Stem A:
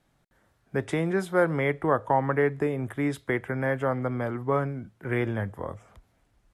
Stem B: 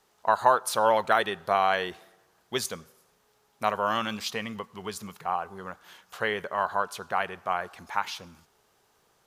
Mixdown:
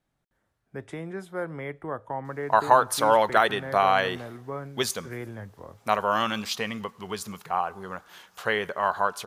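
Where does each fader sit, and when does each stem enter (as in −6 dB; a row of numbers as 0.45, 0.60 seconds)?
−9.5, +2.5 decibels; 0.00, 2.25 seconds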